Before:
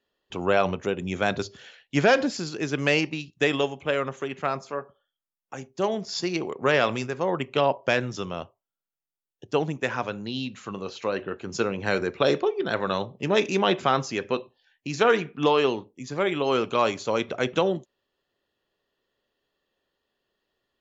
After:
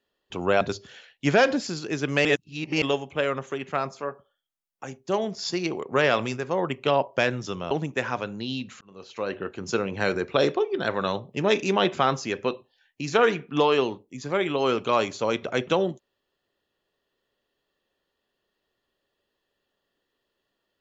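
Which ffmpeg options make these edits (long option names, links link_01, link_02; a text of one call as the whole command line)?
ffmpeg -i in.wav -filter_complex "[0:a]asplit=6[link_01][link_02][link_03][link_04][link_05][link_06];[link_01]atrim=end=0.612[link_07];[link_02]atrim=start=1.308:end=2.952[link_08];[link_03]atrim=start=2.948:end=3.522,asetpts=PTS-STARTPTS,areverse[link_09];[link_04]atrim=start=3.518:end=8.412[link_10];[link_05]atrim=start=9.568:end=10.67,asetpts=PTS-STARTPTS,afade=type=out:start_time=1.098:duration=0.004:curve=hsin[link_11];[link_06]atrim=start=10.67,asetpts=PTS-STARTPTS,afade=type=in:duration=0.57[link_12];[link_07][link_08]acrossfade=duration=0.004:curve1=hsin:curve2=hsin[link_13];[link_13][link_09]acrossfade=duration=0.004:curve1=hsin:curve2=hsin[link_14];[link_14][link_10]acrossfade=duration=0.004:curve1=hsin:curve2=hsin[link_15];[link_11][link_12]concat=n=2:v=0:a=1[link_16];[link_15][link_16]acrossfade=duration=0.004:curve1=hsin:curve2=hsin" out.wav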